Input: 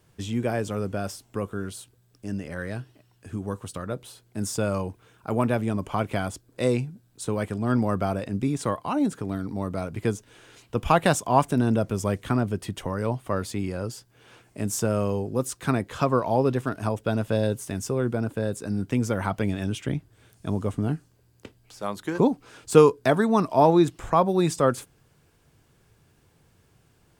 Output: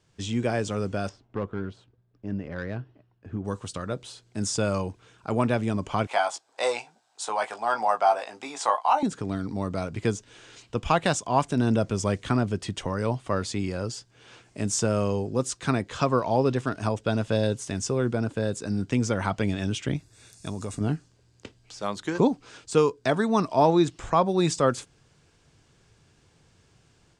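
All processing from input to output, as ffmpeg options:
ffmpeg -i in.wav -filter_complex "[0:a]asettb=1/sr,asplit=3[link_01][link_02][link_03];[link_01]atrim=end=1.094[link_04];[link_02]atrim=start=1.09:end=3.45,asetpts=PTS-STARTPTS,afade=type=in:duration=0.004:curve=qsin,afade=type=out:start_time=2.356:duration=0.004:curve=qsin,asoftclip=type=hard:threshold=-21.5dB,adynamicsmooth=sensitivity=1.5:basefreq=1600,agate=range=-33dB:threshold=-60dB:ratio=3:release=100:detection=peak[link_05];[link_03]atrim=start=3.446[link_06];[link_04][link_05]acrossfade=duration=0.004:curve1=hsin:curve2=qsin[link_07];[link_07][link_06]acrossfade=duration=0.004:curve1=qsin:curve2=hsin,asettb=1/sr,asplit=3[link_08][link_09][link_10];[link_08]atrim=end=6.074[link_11];[link_09]atrim=start=6.07:end=9.03,asetpts=PTS-STARTPTS,afade=type=in:duration=0.004:curve=qsin,afade=type=out:start_time=2.956:duration=0.004:curve=qsin,highpass=frequency=800:width_type=q:width=4.6,asplit=2[link_12][link_13];[link_13]adelay=18,volume=-6.5dB[link_14];[link_12][link_14]amix=inputs=2:normalize=0,atrim=end_sample=130536[link_15];[link_10]atrim=start=9.026[link_16];[link_11][link_15]acrossfade=duration=0.004:curve1=hsin:curve2=qsin[link_17];[link_17][link_16]acrossfade=duration=0.004:curve1=qsin:curve2=hsin,asettb=1/sr,asplit=3[link_18][link_19][link_20];[link_18]atrim=end=19.964[link_21];[link_19]atrim=start=19.96:end=20.81,asetpts=PTS-STARTPTS,afade=type=in:duration=0.004:curve=qsin,afade=type=out:start_time=0.846:duration=0.004:curve=qsin,aemphasis=mode=production:type=75fm,acompressor=threshold=-29dB:ratio=3:attack=3.2:release=140:knee=1:detection=peak,asuperstop=centerf=3100:order=8:qfactor=7.6[link_22];[link_20]atrim=start=20.806[link_23];[link_21][link_22]acrossfade=duration=0.004:curve1=hsin:curve2=qsin[link_24];[link_24][link_23]acrossfade=duration=0.004:curve1=qsin:curve2=hsin,lowpass=frequency=8100:width=0.5412,lowpass=frequency=8100:width=1.3066,equalizer=frequency=5600:width_type=o:width=2.2:gain=5.5,dynaudnorm=framelen=120:gausssize=3:maxgain=6dB,volume=-6dB" out.wav

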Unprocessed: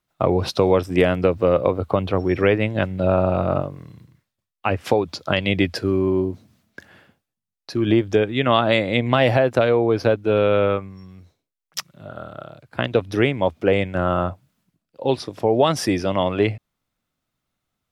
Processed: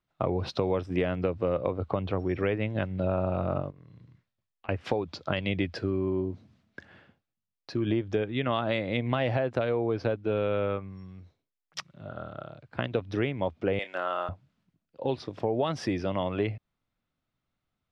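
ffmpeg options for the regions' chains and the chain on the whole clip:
ffmpeg -i in.wav -filter_complex "[0:a]asettb=1/sr,asplit=3[link_01][link_02][link_03];[link_01]atrim=end=3.704[link_04];[link_02]atrim=start=3.7:end=4.69,asetpts=PTS-STARTPTS,afade=type=in:duration=0.004:curve=qsin,afade=type=out:start_time=0.986:duration=0.004:curve=qsin,lowpass=9700,acompressor=threshold=-44dB:ratio=10:attack=3.2:release=140:knee=1:detection=peak,asplit=2[link_05][link_06];[link_06]adelay=17,volume=-12dB[link_07];[link_05][link_07]amix=inputs=2:normalize=0,atrim=end_sample=43659[link_08];[link_03]atrim=start=4.686[link_09];[link_04][link_08]acrossfade=duration=0.004:curve1=hsin:curve2=qsin[link_10];[link_10][link_09]acrossfade=duration=0.004:curve1=qsin:curve2=hsin,asettb=1/sr,asplit=3[link_11][link_12][link_13];[link_11]atrim=end=13.794[link_14];[link_12]atrim=start=13.79:end=14.29,asetpts=PTS-STARTPTS,afade=type=in:duration=0.004:curve=qsin,afade=type=out:start_time=0.496:duration=0.004:curve=qsin,highpass=410,lowpass=6900,aemphasis=mode=production:type=riaa,asplit=2[link_15][link_16];[link_16]adelay=29,volume=-11.5dB[link_17];[link_15][link_17]amix=inputs=2:normalize=0,atrim=end_sample=22050[link_18];[link_13]atrim=start=14.286[link_19];[link_14][link_18]acrossfade=duration=0.004:curve1=hsin:curve2=qsin[link_20];[link_20][link_19]acrossfade=duration=0.004:curve1=qsin:curve2=hsin,lowpass=4300,lowshelf=frequency=180:gain=3.5,acompressor=threshold=-23dB:ratio=2,volume=-5dB" out.wav

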